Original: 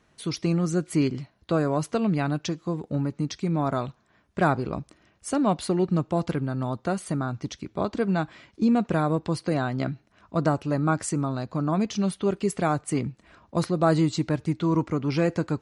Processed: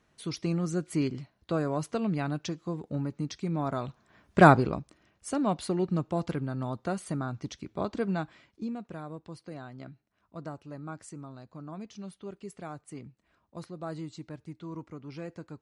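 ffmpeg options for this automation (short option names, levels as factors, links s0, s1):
-af "volume=2,afade=t=in:st=3.81:d=0.66:silence=0.266073,afade=t=out:st=4.47:d=0.33:silence=0.281838,afade=t=out:st=8.04:d=0.74:silence=0.251189"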